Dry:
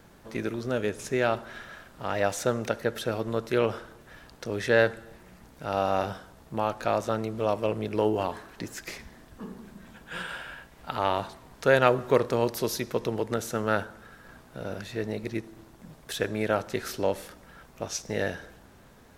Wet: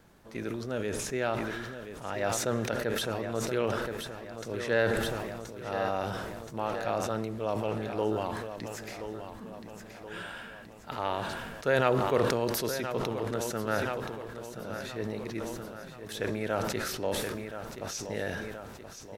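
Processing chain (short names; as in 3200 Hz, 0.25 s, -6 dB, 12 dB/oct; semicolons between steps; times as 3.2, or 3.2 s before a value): on a send: feedback echo 1.025 s, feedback 52%, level -10 dB; on the sum: sustainer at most 27 dB/s; gain -6 dB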